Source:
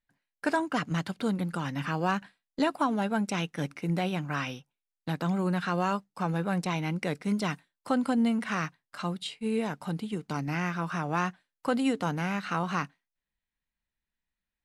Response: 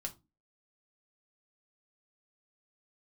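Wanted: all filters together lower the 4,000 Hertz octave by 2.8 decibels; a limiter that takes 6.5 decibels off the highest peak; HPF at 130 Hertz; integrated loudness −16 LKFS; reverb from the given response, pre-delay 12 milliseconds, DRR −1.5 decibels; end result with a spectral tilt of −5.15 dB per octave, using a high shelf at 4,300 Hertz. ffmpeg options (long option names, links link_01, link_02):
-filter_complex "[0:a]highpass=130,equalizer=frequency=4000:width_type=o:gain=-8.5,highshelf=frequency=4300:gain=8,alimiter=limit=-20dB:level=0:latency=1,asplit=2[link_01][link_02];[1:a]atrim=start_sample=2205,adelay=12[link_03];[link_02][link_03]afir=irnorm=-1:irlink=0,volume=3dB[link_04];[link_01][link_04]amix=inputs=2:normalize=0,volume=11.5dB"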